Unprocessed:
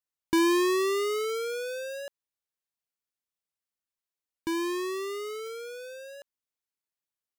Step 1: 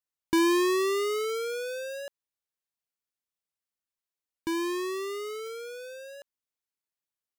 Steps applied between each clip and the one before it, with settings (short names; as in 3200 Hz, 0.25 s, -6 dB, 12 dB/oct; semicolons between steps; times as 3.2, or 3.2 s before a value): nothing audible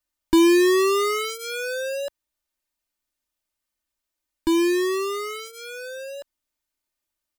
low shelf 73 Hz +11.5 dB; comb 3.3 ms, depth 81%; in parallel at 0 dB: limiter -21.5 dBFS, peak gain reduction 9.5 dB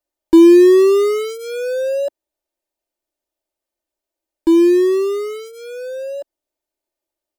band shelf 500 Hz +13 dB; gain -3.5 dB